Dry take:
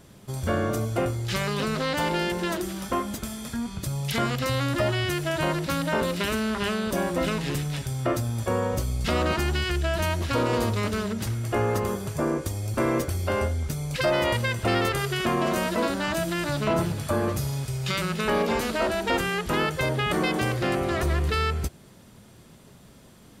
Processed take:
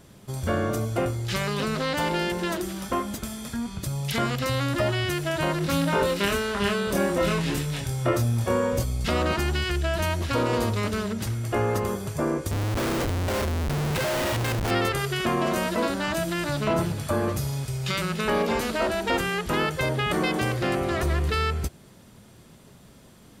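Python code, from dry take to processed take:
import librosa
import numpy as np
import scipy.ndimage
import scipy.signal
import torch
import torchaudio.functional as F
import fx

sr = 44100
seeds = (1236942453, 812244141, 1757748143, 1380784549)

y = fx.doubler(x, sr, ms=25.0, db=-2, at=(5.6, 8.83), fade=0.02)
y = fx.schmitt(y, sr, flips_db=-30.0, at=(12.51, 14.71))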